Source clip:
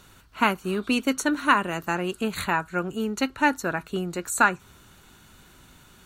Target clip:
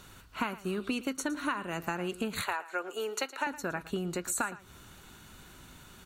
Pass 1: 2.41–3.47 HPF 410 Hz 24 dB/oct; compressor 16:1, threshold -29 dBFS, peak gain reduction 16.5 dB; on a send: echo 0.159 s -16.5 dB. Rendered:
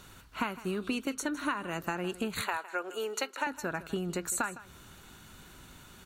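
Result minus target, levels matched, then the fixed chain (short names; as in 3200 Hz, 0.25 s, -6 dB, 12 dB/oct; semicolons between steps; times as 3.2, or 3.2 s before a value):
echo 45 ms late
2.41–3.47 HPF 410 Hz 24 dB/oct; compressor 16:1, threshold -29 dBFS, peak gain reduction 16.5 dB; on a send: echo 0.114 s -16.5 dB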